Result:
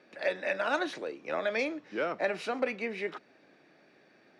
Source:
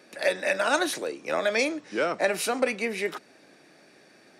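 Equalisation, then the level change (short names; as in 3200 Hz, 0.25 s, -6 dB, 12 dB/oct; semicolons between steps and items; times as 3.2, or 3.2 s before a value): LPF 3500 Hz 12 dB/oct; -5.5 dB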